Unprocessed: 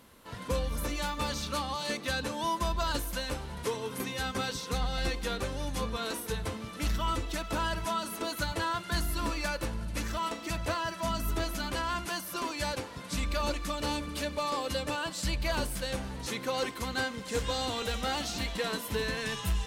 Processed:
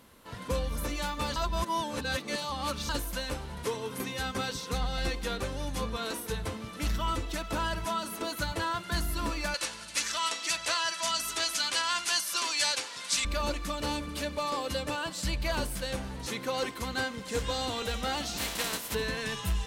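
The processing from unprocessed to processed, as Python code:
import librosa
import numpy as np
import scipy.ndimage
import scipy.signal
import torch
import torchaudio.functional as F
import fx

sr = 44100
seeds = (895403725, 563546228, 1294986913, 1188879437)

y = fx.weighting(x, sr, curve='ITU-R 468', at=(9.54, 13.25))
y = fx.spec_flatten(y, sr, power=0.43, at=(18.36, 18.93), fade=0.02)
y = fx.edit(y, sr, fx.reverse_span(start_s=1.36, length_s=1.53), tone=tone)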